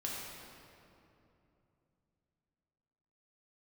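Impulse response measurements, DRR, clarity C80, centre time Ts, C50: −4.5 dB, 0.0 dB, 136 ms, −1.5 dB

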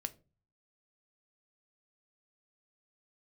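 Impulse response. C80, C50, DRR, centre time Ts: 25.5 dB, 20.0 dB, 9.5 dB, 3 ms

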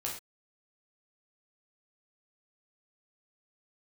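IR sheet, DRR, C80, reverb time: −3.0 dB, 10.0 dB, non-exponential decay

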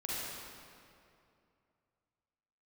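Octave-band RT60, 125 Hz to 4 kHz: 2.9, 2.7, 2.7, 2.5, 2.1, 1.8 seconds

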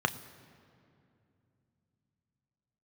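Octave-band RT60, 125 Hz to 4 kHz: 4.4, 4.0, 2.8, 2.4, 2.2, 1.6 seconds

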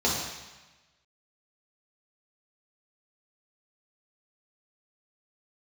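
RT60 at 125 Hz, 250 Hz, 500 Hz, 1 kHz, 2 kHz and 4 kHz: 1.3, 1.1, 1.1, 1.2, 1.3, 1.2 seconds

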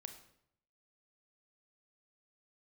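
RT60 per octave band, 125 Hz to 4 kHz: 0.90, 0.80, 0.75, 0.70, 0.60, 0.55 seconds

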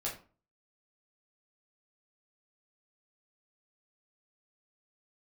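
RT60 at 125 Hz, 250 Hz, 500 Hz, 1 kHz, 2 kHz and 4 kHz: 0.50, 0.45, 0.40, 0.40, 0.30, 0.25 seconds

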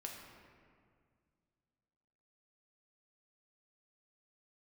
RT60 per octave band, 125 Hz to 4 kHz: 2.8, 2.6, 2.1, 1.9, 1.7, 1.2 seconds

